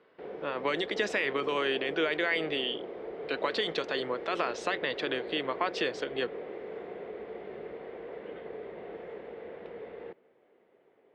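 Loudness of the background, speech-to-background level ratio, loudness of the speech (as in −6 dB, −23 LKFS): −41.5 LKFS, 9.5 dB, −32.0 LKFS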